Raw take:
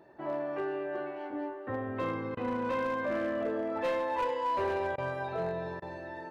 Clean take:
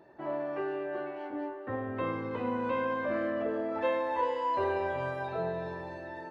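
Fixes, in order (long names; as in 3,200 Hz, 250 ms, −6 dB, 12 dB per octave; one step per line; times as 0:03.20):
clipped peaks rebuilt −26 dBFS
repair the gap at 0:02.35/0:04.96/0:05.80, 19 ms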